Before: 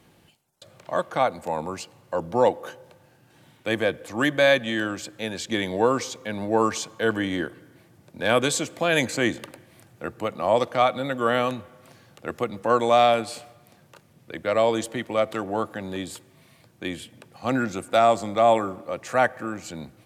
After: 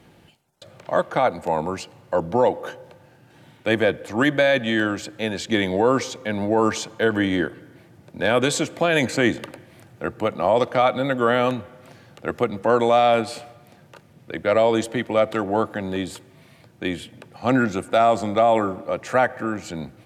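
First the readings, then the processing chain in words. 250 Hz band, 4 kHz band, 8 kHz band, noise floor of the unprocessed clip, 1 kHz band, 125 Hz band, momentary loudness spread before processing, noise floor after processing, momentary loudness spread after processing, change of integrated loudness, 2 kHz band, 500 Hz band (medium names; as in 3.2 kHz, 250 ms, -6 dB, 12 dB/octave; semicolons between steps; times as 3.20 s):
+4.5 dB, +1.0 dB, -0.5 dB, -58 dBFS, +1.5 dB, +4.5 dB, 16 LU, -53 dBFS, 13 LU, +2.5 dB, +2.5 dB, +3.0 dB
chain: treble shelf 4.8 kHz -8 dB; band-stop 1.1 kHz, Q 17; loudness maximiser +12.5 dB; trim -7 dB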